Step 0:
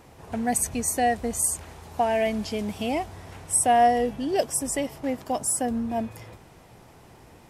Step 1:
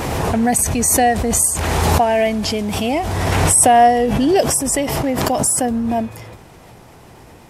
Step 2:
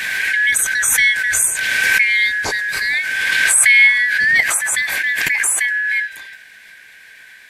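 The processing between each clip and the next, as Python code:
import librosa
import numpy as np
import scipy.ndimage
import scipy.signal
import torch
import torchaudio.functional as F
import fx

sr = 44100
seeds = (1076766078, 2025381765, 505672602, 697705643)

y1 = fx.pre_swell(x, sr, db_per_s=20.0)
y1 = y1 * 10.0 ** (7.5 / 20.0)
y2 = fx.band_shuffle(y1, sr, order='4123')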